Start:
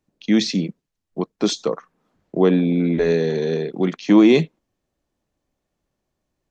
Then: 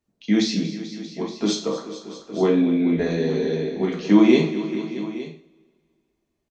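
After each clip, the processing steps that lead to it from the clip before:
on a send: multi-tap delay 234/436/628/868 ms −15/−15/−17/−16 dB
on the sum: coupled-rooms reverb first 0.43 s, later 2.3 s, from −27 dB, DRR −1.5 dB
level −6 dB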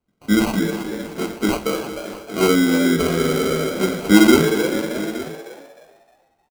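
decimation without filtering 25×
on a send: echo with shifted repeats 309 ms, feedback 32%, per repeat +120 Hz, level −10 dB
on the sum: level +2.5 dB

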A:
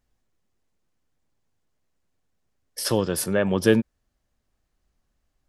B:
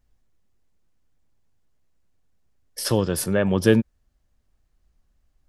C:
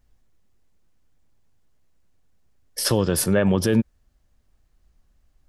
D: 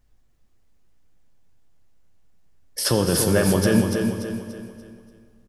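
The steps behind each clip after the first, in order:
low-shelf EQ 110 Hz +9.5 dB
brickwall limiter −14 dBFS, peak gain reduction 10.5 dB; level +4 dB
on a send: repeating echo 290 ms, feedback 40%, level −6 dB; on the sum: dense smooth reverb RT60 2.2 s, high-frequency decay 0.8×, DRR 6 dB

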